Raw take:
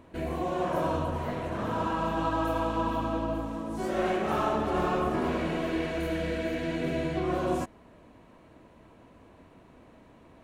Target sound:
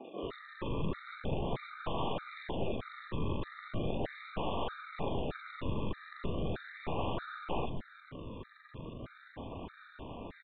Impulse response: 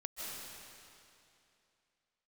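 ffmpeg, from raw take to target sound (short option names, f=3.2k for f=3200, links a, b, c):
-filter_complex "[0:a]areverse,acompressor=threshold=-38dB:ratio=8,areverse,acrusher=samples=41:mix=1:aa=0.000001:lfo=1:lforange=41:lforate=0.38,aeval=exprs='0.0398*(cos(1*acos(clip(val(0)/0.0398,-1,1)))-cos(1*PI/2))+0.00316*(cos(3*acos(clip(val(0)/0.0398,-1,1)))-cos(3*PI/2))+0.00251*(cos(6*acos(clip(val(0)/0.0398,-1,1)))-cos(6*PI/2))+0.0178*(cos(7*acos(clip(val(0)/0.0398,-1,1)))-cos(7*PI/2))+0.0112*(cos(8*acos(clip(val(0)/0.0398,-1,1)))-cos(8*PI/2))':c=same,aresample=8000,acrusher=bits=5:mode=log:mix=0:aa=0.000001,aresample=44100,acrossover=split=260|2200[a][b][c];[c]adelay=40[d];[a]adelay=230[e];[e][b][d]amix=inputs=3:normalize=0,afftfilt=real='re*gt(sin(2*PI*1.6*pts/sr)*(1-2*mod(floor(b*sr/1024/1200),2)),0)':imag='im*gt(sin(2*PI*1.6*pts/sr)*(1-2*mod(floor(b*sr/1024/1200),2)),0)':win_size=1024:overlap=0.75,volume=5dB"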